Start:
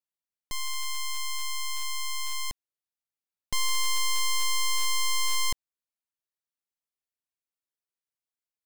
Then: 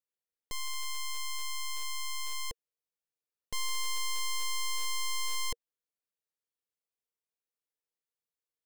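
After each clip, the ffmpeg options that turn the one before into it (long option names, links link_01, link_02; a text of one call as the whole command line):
ffmpeg -i in.wav -af "equalizer=frequency=470:width_type=o:width=0.34:gain=11.5,alimiter=level_in=1.5dB:limit=-24dB:level=0:latency=1,volume=-1.5dB,volume=-4.5dB" out.wav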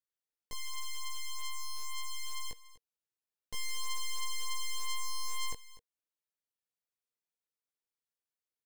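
ffmpeg -i in.wav -af "aecho=1:1:246:0.133,flanger=delay=16.5:depth=3.7:speed=0.29,volume=-1dB" out.wav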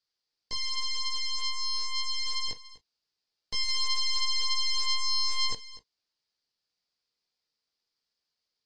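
ffmpeg -i in.wav -af "lowpass=frequency=4800:width_type=q:width=6.5,volume=4.5dB" -ar 22050 -c:a aac -b:a 32k out.aac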